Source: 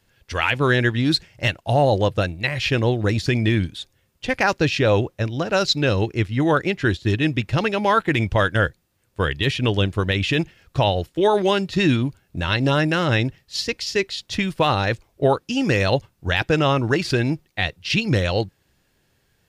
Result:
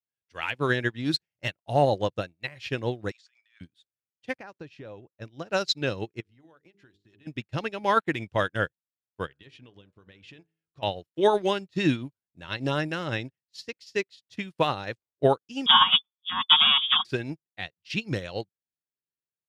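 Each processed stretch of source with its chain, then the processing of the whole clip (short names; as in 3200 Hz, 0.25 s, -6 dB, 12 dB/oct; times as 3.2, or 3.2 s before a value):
3.11–3.61 Chebyshev band-pass 1200–7900 Hz, order 3 + negative-ratio compressor -33 dBFS
4.36–5.22 high shelf 2600 Hz -9.5 dB + compressor 8:1, threshold -20 dBFS
6.2–7.27 notches 50/100/150/200/250/300/350/400/450 Hz + compressor 16:1, threshold -26 dBFS
9.26–10.83 high shelf 8700 Hz -10.5 dB + compressor 10:1, threshold -22 dBFS + de-hum 53.95 Hz, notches 31
15.66–17.05 minimum comb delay 5.8 ms + inverted band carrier 3500 Hz + EQ curve 100 Hz 0 dB, 230 Hz +6 dB, 440 Hz -25 dB, 1100 Hz +13 dB, 1800 Hz -6 dB, 4900 Hz +9 dB
whole clip: HPF 120 Hz 12 dB/oct; upward expander 2.5:1, over -39 dBFS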